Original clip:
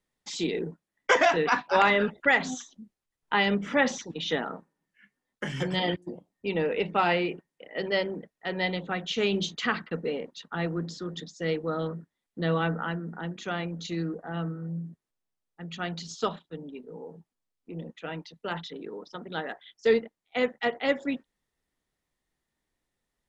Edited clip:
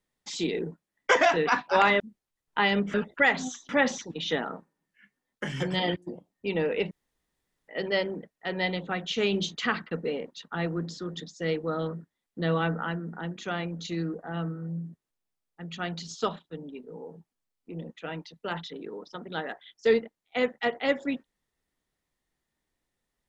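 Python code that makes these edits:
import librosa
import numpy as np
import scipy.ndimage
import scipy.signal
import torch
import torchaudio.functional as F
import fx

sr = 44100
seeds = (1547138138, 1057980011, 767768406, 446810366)

y = fx.edit(x, sr, fx.move(start_s=2.0, length_s=0.75, to_s=3.69),
    fx.room_tone_fill(start_s=6.91, length_s=0.77), tone=tone)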